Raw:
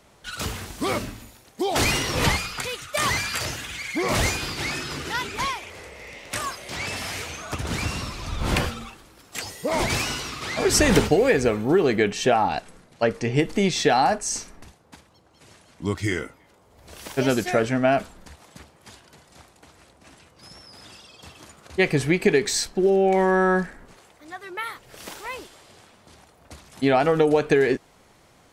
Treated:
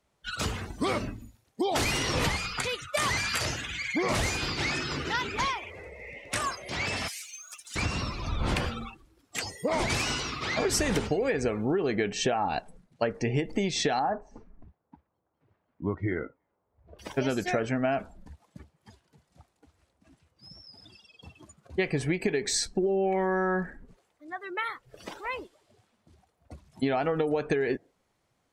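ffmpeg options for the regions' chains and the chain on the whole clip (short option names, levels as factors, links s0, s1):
-filter_complex "[0:a]asettb=1/sr,asplit=3[s0][s1][s2];[s0]atrim=end=7.084[s3];[s1]atrim=start=7.08:end=7.76,asetpts=PTS-STARTPTS,afade=t=in:d=0.004:c=qsin,afade=t=out:st=0.676:d=0.004:c=qsin,aeval=exprs='val(0)+0.5*0.00944*sgn(val(0))':c=same,aderivative[s4];[s2]atrim=start=7.756[s5];[s3][s4]acrossfade=d=0.004:c1=hsin:c2=qsin[s6];[s6][s5]acrossfade=d=0.004:c1=qsin:c2=hsin,asettb=1/sr,asplit=3[s7][s8][s9];[s7]atrim=end=13.994[s10];[s8]atrim=start=13.99:end=16.99,asetpts=PTS-STARTPTS,afade=t=in:d=0.004:c=qsin,afade=t=out:st=2.996:d=0.004:c=qsin,lowpass=1400,lowshelf=f=330:g=-3.5[s11];[s9]atrim=start=16.986[s12];[s10][s11]acrossfade=d=0.004:c1=hsin:c2=qsin[s13];[s13][s12]acrossfade=d=0.004:c1=qsin:c2=hsin,afftdn=nr=19:nf=-40,acompressor=threshold=0.0631:ratio=6"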